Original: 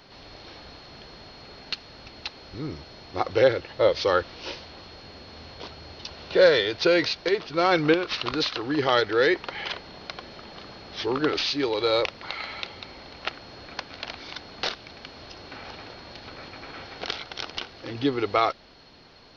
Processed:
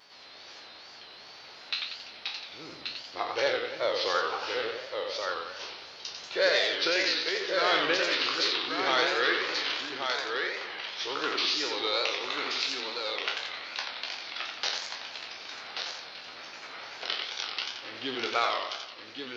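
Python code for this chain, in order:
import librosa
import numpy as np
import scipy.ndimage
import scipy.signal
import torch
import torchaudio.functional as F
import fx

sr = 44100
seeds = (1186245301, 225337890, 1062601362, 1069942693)

p1 = fx.spec_trails(x, sr, decay_s=0.39)
p2 = p1 + fx.echo_single(p1, sr, ms=1129, db=-5.0, dry=0)
p3 = fx.wow_flutter(p2, sr, seeds[0], rate_hz=2.1, depth_cents=97.0)
p4 = fx.highpass(p3, sr, hz=1300.0, slope=6)
p5 = fx.echo_warbled(p4, sr, ms=90, feedback_pct=55, rate_hz=2.8, cents=185, wet_db=-5)
y = p5 * 10.0 ** (-2.5 / 20.0)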